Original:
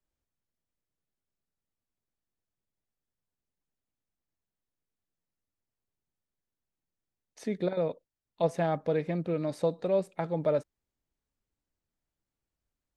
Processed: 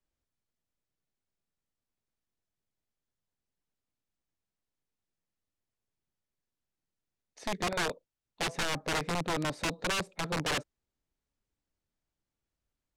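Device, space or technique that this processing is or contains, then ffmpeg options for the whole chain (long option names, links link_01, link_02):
overflowing digital effects unit: -af "aeval=exprs='(mod(17.8*val(0)+1,2)-1)/17.8':channel_layout=same,lowpass=8500"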